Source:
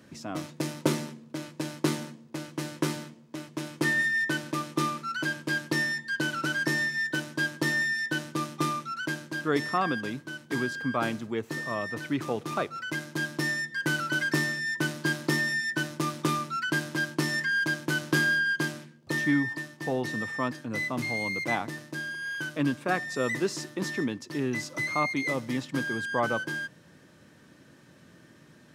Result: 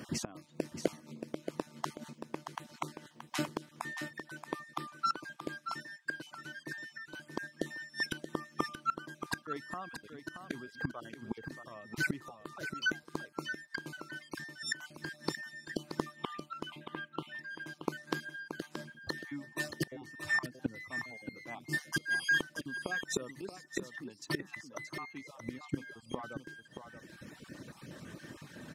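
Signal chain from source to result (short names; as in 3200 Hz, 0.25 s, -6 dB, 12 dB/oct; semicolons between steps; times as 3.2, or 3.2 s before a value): random spectral dropouts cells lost 23%; reverb removal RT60 1.4 s; 16.16–17.39 resonant high shelf 4100 Hz -11 dB, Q 3; flipped gate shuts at -30 dBFS, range -25 dB; echo 0.627 s -8.5 dB; gain +9 dB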